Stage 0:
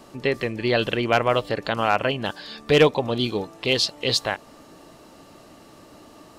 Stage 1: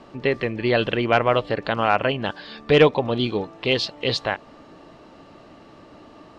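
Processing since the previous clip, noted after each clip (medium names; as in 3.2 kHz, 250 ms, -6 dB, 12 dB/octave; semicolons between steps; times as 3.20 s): low-pass 3.5 kHz 12 dB/octave; trim +1.5 dB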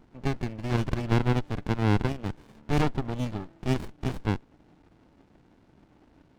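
dynamic bell 1.9 kHz, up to +4 dB, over -31 dBFS, Q 0.81; sliding maximum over 65 samples; trim -8.5 dB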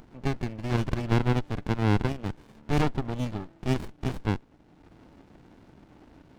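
upward compressor, threshold -45 dBFS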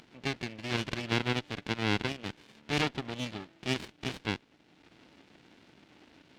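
frequency weighting D; trim -4.5 dB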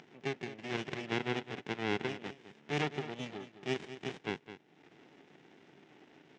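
cabinet simulation 130–7500 Hz, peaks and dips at 150 Hz +6 dB, 400 Hz +9 dB, 770 Hz +5 dB, 1.9 kHz +4 dB, 4.4 kHz -8 dB; upward compressor, threshold -46 dBFS; delay 210 ms -12.5 dB; trim -6.5 dB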